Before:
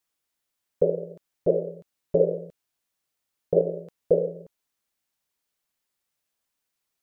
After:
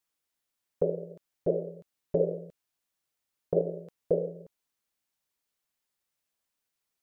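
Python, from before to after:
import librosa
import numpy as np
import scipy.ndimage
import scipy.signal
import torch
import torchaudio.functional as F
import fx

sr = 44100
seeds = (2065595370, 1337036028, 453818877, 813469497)

y = fx.dynamic_eq(x, sr, hz=510.0, q=2.4, threshold_db=-34.0, ratio=4.0, max_db=-4)
y = y * 10.0 ** (-3.0 / 20.0)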